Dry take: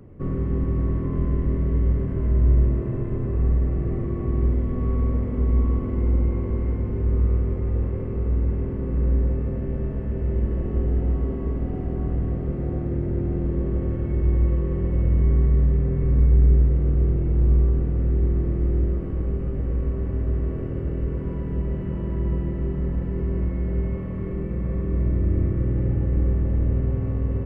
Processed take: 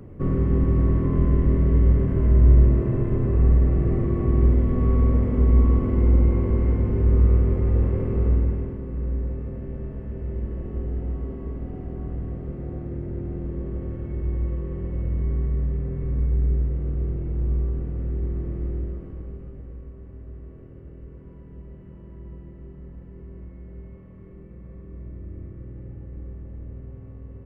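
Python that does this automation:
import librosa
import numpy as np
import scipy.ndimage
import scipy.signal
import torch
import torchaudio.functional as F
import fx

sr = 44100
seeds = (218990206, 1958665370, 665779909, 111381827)

y = fx.gain(x, sr, db=fx.line((8.29, 3.5), (8.84, -6.0), (18.66, -6.0), (19.92, -16.0)))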